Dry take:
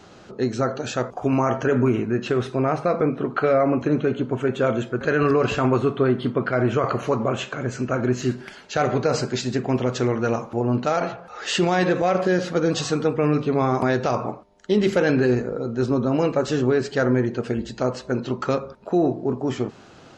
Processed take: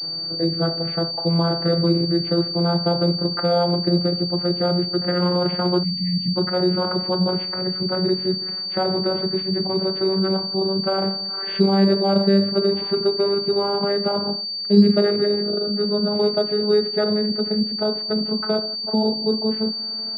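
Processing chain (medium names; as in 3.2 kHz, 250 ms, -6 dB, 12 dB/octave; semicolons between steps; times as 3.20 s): vocoder on a note that slides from E3, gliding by +5 st; spectral selection erased 5.83–6.36 s, 310–1800 Hz; in parallel at -0.5 dB: compression, threshold -32 dBFS, peak gain reduction 21 dB; on the sum: feedback echo behind a high-pass 78 ms, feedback 35%, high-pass 1.5 kHz, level -20.5 dB; class-D stage that switches slowly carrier 4.6 kHz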